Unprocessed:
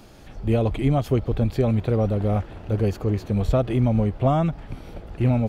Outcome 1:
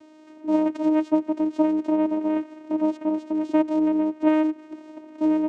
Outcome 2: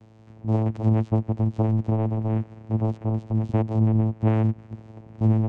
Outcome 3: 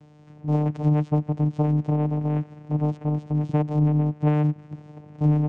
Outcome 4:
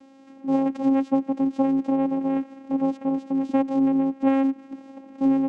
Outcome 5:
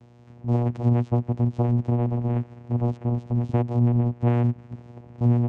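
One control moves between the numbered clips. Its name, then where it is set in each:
vocoder, frequency: 310 Hz, 110 Hz, 150 Hz, 270 Hz, 120 Hz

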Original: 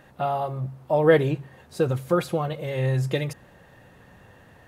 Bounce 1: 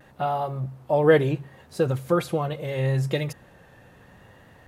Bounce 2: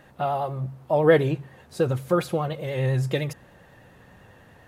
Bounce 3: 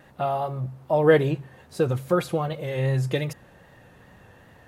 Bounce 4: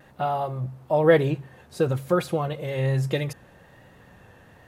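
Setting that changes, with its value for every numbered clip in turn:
vibrato, rate: 0.74 Hz, 10 Hz, 2.5 Hz, 1.1 Hz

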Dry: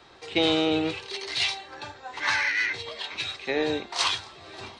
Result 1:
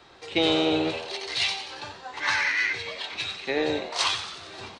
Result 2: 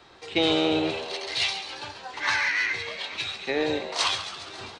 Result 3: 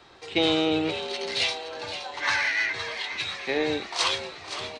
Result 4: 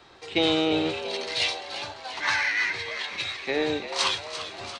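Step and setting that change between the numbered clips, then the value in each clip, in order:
frequency-shifting echo, time: 91 ms, 137 ms, 519 ms, 343 ms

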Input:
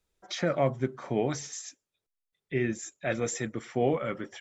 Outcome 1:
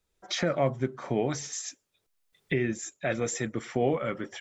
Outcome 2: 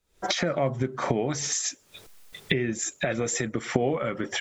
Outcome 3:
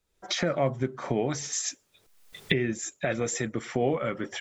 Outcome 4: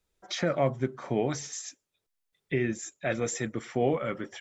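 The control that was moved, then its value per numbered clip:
recorder AGC, rising by: 13 dB/s, 89 dB/s, 35 dB/s, 5.1 dB/s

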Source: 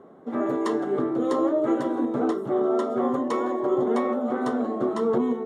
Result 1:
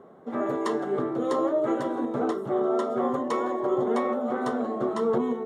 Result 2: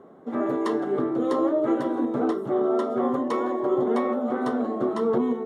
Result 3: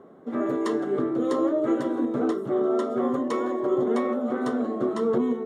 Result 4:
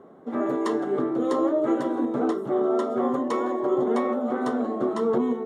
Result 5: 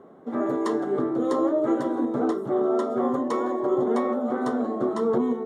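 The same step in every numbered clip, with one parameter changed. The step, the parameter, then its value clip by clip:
dynamic bell, frequency: 290 Hz, 7.2 kHz, 840 Hz, 100 Hz, 2.6 kHz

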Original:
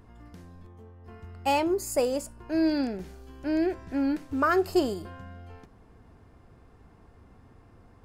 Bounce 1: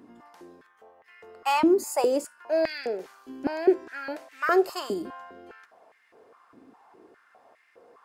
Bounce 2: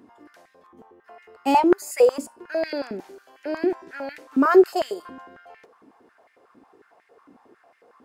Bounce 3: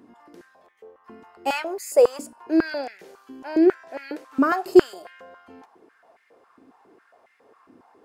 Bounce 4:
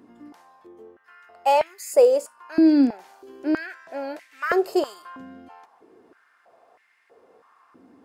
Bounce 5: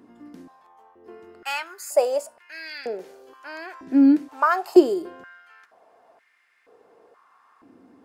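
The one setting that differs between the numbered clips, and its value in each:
step-sequenced high-pass, rate: 4.9 Hz, 11 Hz, 7.3 Hz, 3.1 Hz, 2.1 Hz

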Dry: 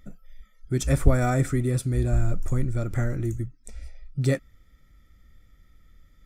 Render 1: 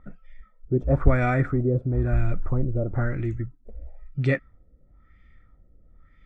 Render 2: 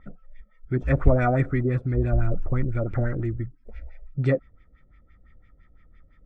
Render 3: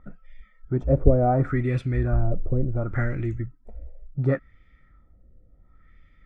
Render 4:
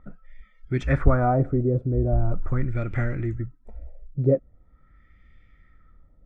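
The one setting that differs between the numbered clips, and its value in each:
LFO low-pass, rate: 1 Hz, 5.9 Hz, 0.7 Hz, 0.42 Hz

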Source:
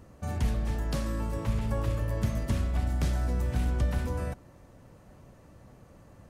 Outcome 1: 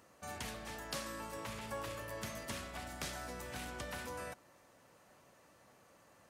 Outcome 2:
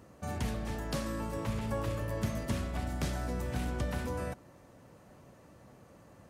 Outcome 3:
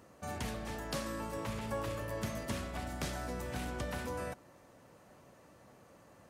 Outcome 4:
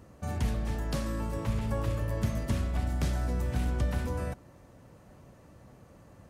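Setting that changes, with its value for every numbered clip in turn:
high-pass, cutoff frequency: 1.2 kHz, 170 Hz, 430 Hz, 51 Hz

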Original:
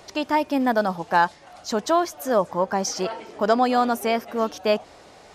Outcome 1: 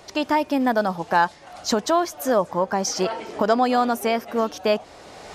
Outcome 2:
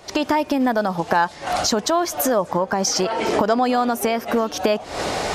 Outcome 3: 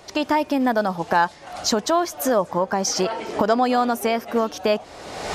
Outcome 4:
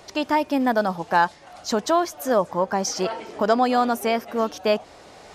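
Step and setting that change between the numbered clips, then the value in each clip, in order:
recorder AGC, rising by: 15 dB/s, 90 dB/s, 36 dB/s, 5.9 dB/s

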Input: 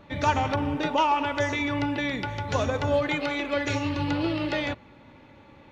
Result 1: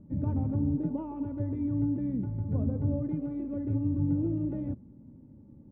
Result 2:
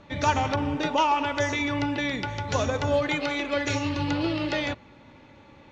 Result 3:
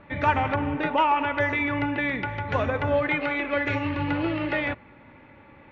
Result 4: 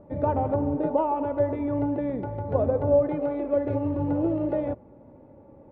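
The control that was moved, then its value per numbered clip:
resonant low-pass, frequency: 220 Hz, 6.8 kHz, 2.1 kHz, 580 Hz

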